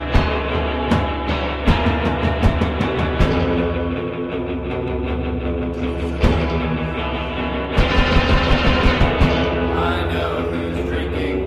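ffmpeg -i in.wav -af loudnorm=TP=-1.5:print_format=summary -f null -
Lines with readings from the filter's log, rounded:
Input Integrated:    -19.5 LUFS
Input True Peak:      -3.8 dBTP
Input LRA:             3.6 LU
Input Threshold:     -29.5 LUFS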